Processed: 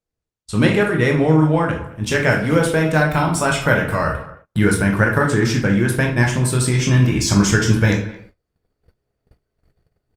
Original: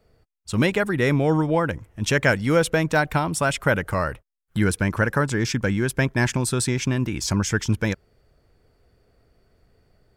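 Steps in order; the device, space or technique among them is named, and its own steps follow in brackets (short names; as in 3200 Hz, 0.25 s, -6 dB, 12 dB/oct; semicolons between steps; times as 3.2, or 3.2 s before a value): speakerphone in a meeting room (reverb RT60 0.65 s, pre-delay 15 ms, DRR 0 dB; speakerphone echo 0.22 s, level -19 dB; AGC gain up to 11 dB; gate -41 dBFS, range -25 dB; gain -1.5 dB; Opus 32 kbps 48000 Hz)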